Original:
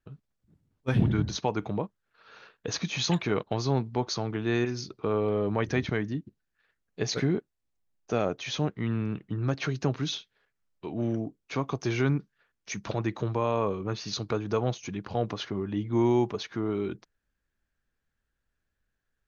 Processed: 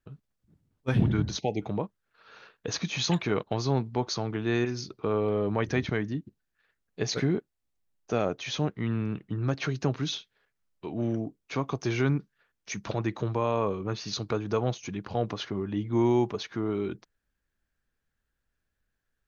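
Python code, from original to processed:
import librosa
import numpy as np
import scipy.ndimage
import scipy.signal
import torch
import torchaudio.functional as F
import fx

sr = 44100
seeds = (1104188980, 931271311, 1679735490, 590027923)

y = fx.spec_erase(x, sr, start_s=1.39, length_s=0.23, low_hz=850.0, high_hz=1900.0)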